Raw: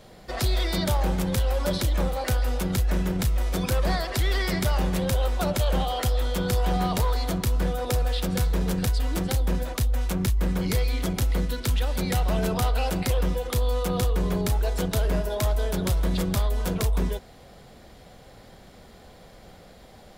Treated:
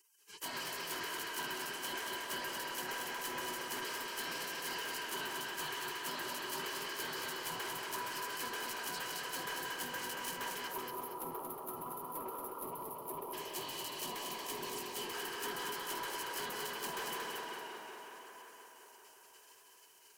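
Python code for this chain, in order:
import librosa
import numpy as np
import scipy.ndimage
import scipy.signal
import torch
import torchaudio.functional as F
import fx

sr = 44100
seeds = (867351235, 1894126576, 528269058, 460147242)

y = fx.peak_eq(x, sr, hz=450.0, db=-15.0, octaves=0.67)
y = fx.spec_gate(y, sr, threshold_db=-30, keep='weak')
y = fx.notch(y, sr, hz=3600.0, q=6.0)
y = fx.small_body(y, sr, hz=(390.0, 970.0, 1600.0, 3000.0), ring_ms=40, db=13)
y = fx.echo_tape(y, sr, ms=182, feedback_pct=84, wet_db=-4.0, lp_hz=5500.0, drive_db=35.0, wow_cents=32)
y = fx.rider(y, sr, range_db=4, speed_s=0.5)
y = fx.spec_box(y, sr, start_s=10.68, length_s=2.65, low_hz=1400.0, high_hz=10000.0, gain_db=-28)
y = 10.0 ** (-34.5 / 20.0) * np.tanh(y / 10.0 ** (-34.5 / 20.0))
y = fx.peak_eq(y, sr, hz=1500.0, db=-12.0, octaves=0.42, at=(12.61, 15.14))
y = fx.echo_crushed(y, sr, ms=231, feedback_pct=35, bits=11, wet_db=-4)
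y = F.gain(torch.from_numpy(y), -1.0).numpy()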